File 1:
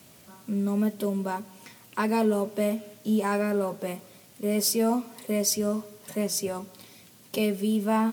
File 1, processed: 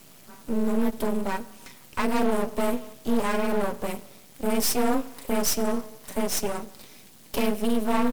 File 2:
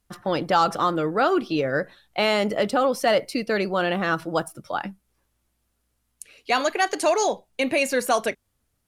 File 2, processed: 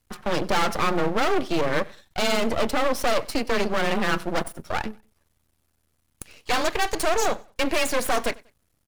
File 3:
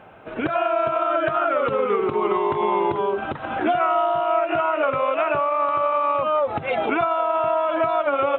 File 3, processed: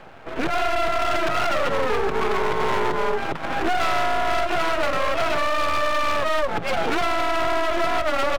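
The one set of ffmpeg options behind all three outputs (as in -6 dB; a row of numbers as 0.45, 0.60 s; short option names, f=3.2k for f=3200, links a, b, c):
-af "volume=21dB,asoftclip=hard,volume=-21dB,afreqshift=20,aeval=exprs='max(val(0),0)':c=same,aecho=1:1:95|190:0.0631|0.0196,volume=6dB"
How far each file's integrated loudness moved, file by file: +0.5, -1.5, -1.0 LU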